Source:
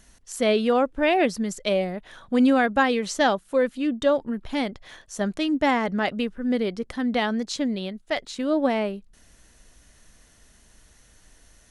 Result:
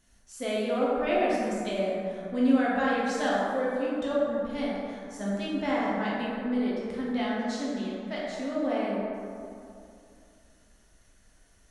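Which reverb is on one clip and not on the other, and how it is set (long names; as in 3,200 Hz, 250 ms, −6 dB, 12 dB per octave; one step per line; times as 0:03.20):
dense smooth reverb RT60 2.6 s, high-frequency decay 0.4×, DRR −7 dB
level −13.5 dB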